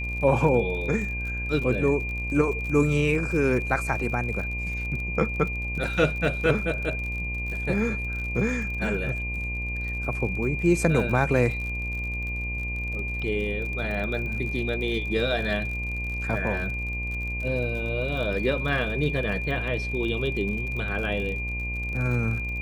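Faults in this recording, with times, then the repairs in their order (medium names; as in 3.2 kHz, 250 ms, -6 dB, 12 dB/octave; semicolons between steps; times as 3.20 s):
buzz 60 Hz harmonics 19 -32 dBFS
crackle 49 per s -33 dBFS
whine 2.4 kHz -31 dBFS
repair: de-click; de-hum 60 Hz, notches 19; band-stop 2.4 kHz, Q 30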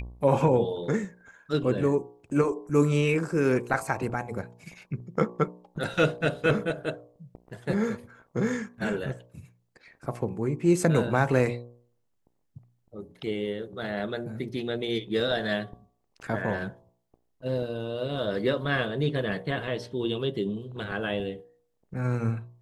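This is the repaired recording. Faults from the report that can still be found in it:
nothing left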